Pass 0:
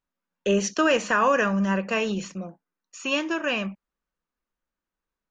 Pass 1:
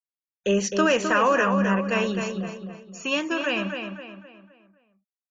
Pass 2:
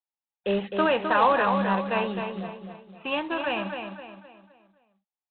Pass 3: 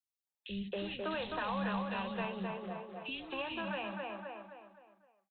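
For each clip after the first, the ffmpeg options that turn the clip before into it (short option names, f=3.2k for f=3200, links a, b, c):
-filter_complex "[0:a]afftfilt=real='re*gte(hypot(re,im),0.00562)':imag='im*gte(hypot(re,im),0.00562)':win_size=1024:overlap=0.75,asplit=2[a][b];[b]adelay=259,lowpass=f=3.9k:p=1,volume=-6dB,asplit=2[c][d];[d]adelay=259,lowpass=f=3.9k:p=1,volume=0.42,asplit=2[e][f];[f]adelay=259,lowpass=f=3.9k:p=1,volume=0.42,asplit=2[g][h];[h]adelay=259,lowpass=f=3.9k:p=1,volume=0.42,asplit=2[i][j];[j]adelay=259,lowpass=f=3.9k:p=1,volume=0.42[k];[c][e][g][i][k]amix=inputs=5:normalize=0[l];[a][l]amix=inputs=2:normalize=0"
-af "equalizer=f=830:t=o:w=0.53:g=14.5,aresample=8000,acrusher=bits=4:mode=log:mix=0:aa=0.000001,aresample=44100,volume=-5dB"
-filter_complex "[0:a]acrossover=split=160|3000[a][b][c];[b]acompressor=threshold=-35dB:ratio=6[d];[a][d][c]amix=inputs=3:normalize=0,acrossover=split=300|2600[e][f][g];[e]adelay=30[h];[f]adelay=270[i];[h][i][g]amix=inputs=3:normalize=0,volume=-1.5dB"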